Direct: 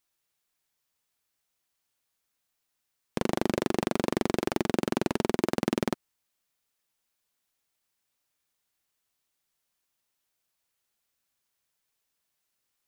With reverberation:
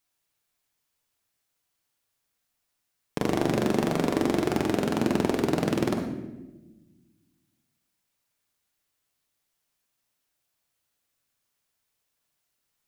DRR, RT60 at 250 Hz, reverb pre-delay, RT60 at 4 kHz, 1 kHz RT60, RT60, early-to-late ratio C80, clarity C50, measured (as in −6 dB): 2.0 dB, 1.8 s, 7 ms, 0.75 s, 0.90 s, 1.1 s, 7.5 dB, 4.0 dB